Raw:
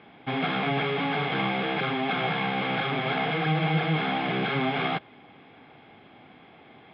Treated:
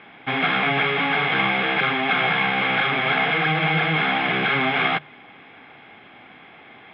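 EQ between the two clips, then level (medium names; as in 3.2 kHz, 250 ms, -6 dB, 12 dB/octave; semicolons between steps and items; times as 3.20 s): peaking EQ 1.9 kHz +9.5 dB 2 oct; hum notches 50/100/150 Hz; band-stop 4.5 kHz, Q 13; +1.0 dB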